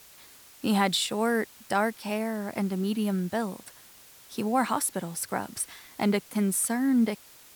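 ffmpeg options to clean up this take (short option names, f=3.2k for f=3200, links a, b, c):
-af "afftdn=nr=20:nf=-53"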